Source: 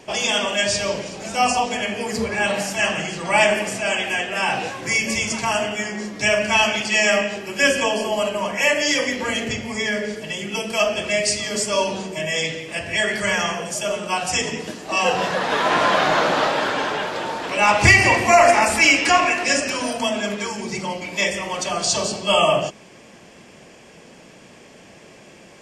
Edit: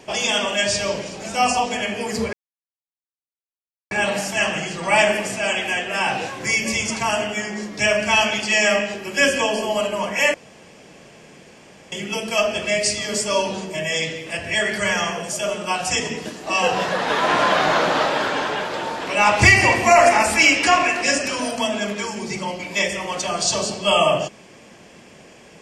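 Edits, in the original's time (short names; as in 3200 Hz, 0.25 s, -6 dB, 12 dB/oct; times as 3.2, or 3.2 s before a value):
2.33 insert silence 1.58 s
8.76–10.34 room tone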